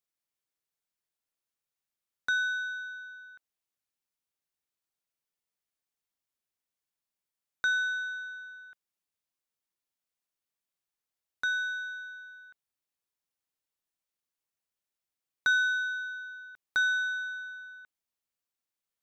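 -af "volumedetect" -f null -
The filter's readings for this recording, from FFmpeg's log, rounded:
mean_volume: -37.6 dB
max_volume: -17.4 dB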